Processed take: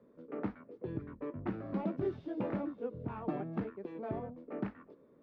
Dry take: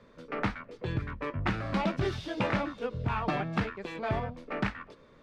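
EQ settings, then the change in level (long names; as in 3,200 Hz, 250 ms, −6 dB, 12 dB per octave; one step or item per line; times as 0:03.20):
resonant band-pass 320 Hz, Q 1.3
−1.0 dB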